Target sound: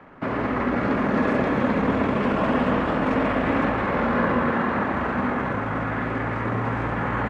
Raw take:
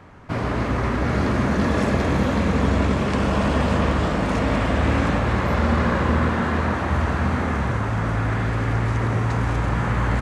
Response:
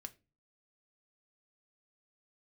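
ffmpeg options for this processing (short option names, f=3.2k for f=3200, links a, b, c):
-filter_complex "[0:a]atempo=1.4,acrossover=split=180 2800:gain=0.251 1 0.0708[a][b][c];[a][b][c]amix=inputs=3:normalize=0,asplit=2[d][e];[1:a]atrim=start_sample=2205,highshelf=f=4.9k:g=10[f];[e][f]afir=irnorm=-1:irlink=0,volume=11dB[g];[d][g]amix=inputs=2:normalize=0,volume=-8dB"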